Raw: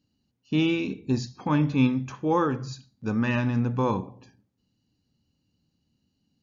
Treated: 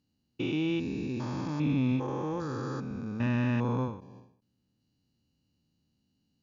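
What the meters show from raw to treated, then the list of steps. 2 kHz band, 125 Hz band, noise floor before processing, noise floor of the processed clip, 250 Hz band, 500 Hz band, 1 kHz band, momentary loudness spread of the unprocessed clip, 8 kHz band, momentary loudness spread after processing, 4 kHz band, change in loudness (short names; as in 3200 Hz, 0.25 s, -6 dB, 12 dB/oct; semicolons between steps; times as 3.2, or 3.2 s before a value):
-6.5 dB, -4.0 dB, -76 dBFS, -77 dBFS, -5.0 dB, -6.5 dB, -8.5 dB, 9 LU, n/a, 8 LU, -6.5 dB, -5.5 dB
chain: stepped spectrum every 0.4 s; added harmonics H 5 -32 dB, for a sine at -15 dBFS; ending taper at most 110 dB/s; gain -2.5 dB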